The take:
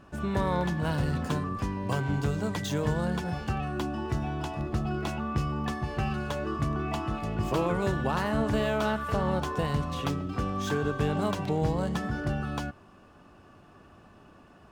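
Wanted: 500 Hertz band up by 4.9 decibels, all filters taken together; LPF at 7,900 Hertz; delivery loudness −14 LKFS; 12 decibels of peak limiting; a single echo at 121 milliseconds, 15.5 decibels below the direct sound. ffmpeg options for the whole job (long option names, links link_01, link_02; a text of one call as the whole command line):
ffmpeg -i in.wav -af "lowpass=7900,equalizer=frequency=500:width_type=o:gain=6,alimiter=limit=-23.5dB:level=0:latency=1,aecho=1:1:121:0.168,volume=18.5dB" out.wav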